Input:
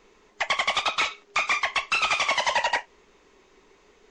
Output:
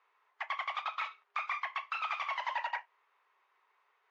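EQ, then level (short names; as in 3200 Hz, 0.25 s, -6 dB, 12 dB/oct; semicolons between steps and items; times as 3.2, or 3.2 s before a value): ladder high-pass 840 Hz, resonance 30%; tape spacing loss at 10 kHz 37 dB; 0.0 dB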